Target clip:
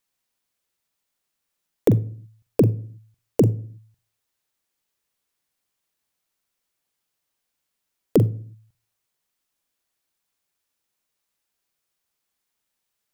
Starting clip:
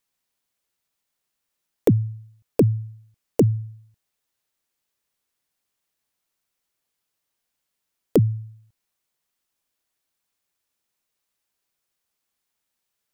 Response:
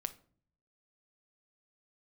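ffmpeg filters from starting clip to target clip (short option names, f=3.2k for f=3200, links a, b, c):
-filter_complex "[0:a]asplit=2[a][b];[1:a]atrim=start_sample=2205,afade=t=out:st=0.37:d=0.01,atrim=end_sample=16758,adelay=43[c];[b][c]afir=irnorm=-1:irlink=0,volume=-9.5dB[d];[a][d]amix=inputs=2:normalize=0"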